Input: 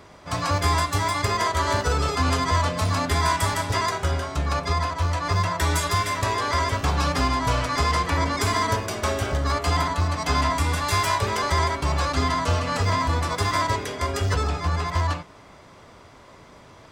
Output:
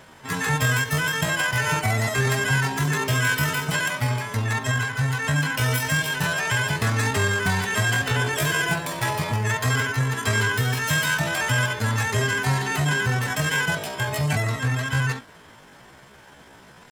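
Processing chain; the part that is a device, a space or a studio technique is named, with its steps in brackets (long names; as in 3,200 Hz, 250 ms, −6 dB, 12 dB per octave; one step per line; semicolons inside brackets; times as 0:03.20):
chipmunk voice (pitch shifter +7.5 semitones)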